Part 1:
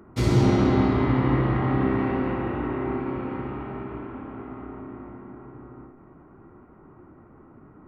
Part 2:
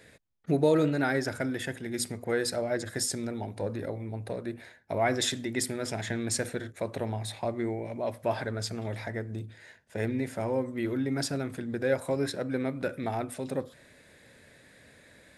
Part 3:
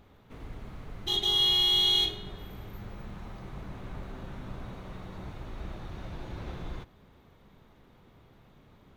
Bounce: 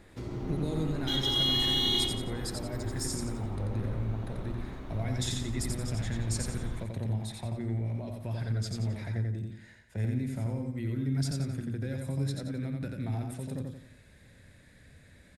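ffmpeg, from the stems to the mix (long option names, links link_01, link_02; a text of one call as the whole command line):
ffmpeg -i stem1.wav -i stem2.wav -i stem3.wav -filter_complex "[0:a]equalizer=frequency=410:width=0.4:gain=6.5,acompressor=threshold=-24dB:ratio=2,volume=-17dB[link_01];[1:a]asubboost=boost=3:cutoff=220,acrossover=split=260|3000[link_02][link_03][link_04];[link_03]acompressor=threshold=-37dB:ratio=6[link_05];[link_02][link_05][link_04]amix=inputs=3:normalize=0,volume=-6dB,asplit=2[link_06][link_07];[link_07]volume=-3.5dB[link_08];[2:a]volume=-3.5dB,asplit=2[link_09][link_10];[link_10]volume=-10.5dB[link_11];[link_08][link_11]amix=inputs=2:normalize=0,aecho=0:1:88|176|264|352|440:1|0.38|0.144|0.0549|0.0209[link_12];[link_01][link_06][link_09][link_12]amix=inputs=4:normalize=0,lowshelf=frequency=79:gain=7.5" out.wav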